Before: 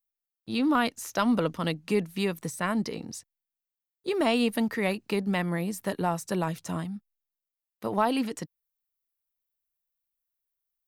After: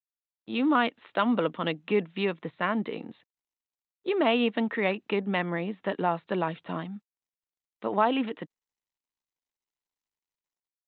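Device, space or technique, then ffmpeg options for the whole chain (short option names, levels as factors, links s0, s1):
Bluetooth headset: -af "highpass=230,dynaudnorm=f=140:g=5:m=2.37,aresample=8000,aresample=44100,volume=0.531" -ar 16000 -c:a sbc -b:a 64k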